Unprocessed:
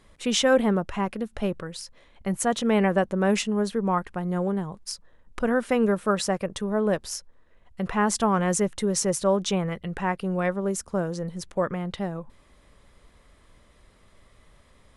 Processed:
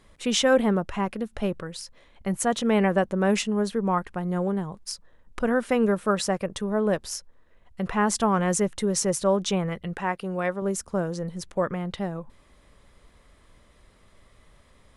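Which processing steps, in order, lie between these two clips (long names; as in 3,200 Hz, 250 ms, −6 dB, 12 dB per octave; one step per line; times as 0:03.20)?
0:09.93–0:10.62: low-shelf EQ 150 Hz −11 dB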